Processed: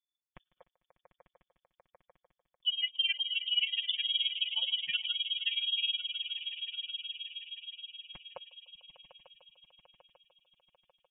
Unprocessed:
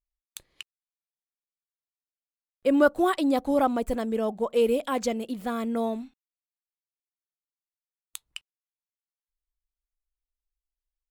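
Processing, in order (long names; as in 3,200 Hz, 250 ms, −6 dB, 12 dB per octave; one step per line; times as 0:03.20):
transient designer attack +4 dB, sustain −9 dB
high-pass filter 140 Hz 6 dB per octave
spectral tilt −3 dB per octave
comb filter 5.4 ms, depth 77%
brickwall limiter −13.5 dBFS, peak gain reduction 11 dB
echo that builds up and dies away 149 ms, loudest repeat 5, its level −14 dB
amplitude tremolo 19 Hz, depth 84%
gate on every frequency bin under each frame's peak −25 dB strong
voice inversion scrambler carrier 3,500 Hz
level −7 dB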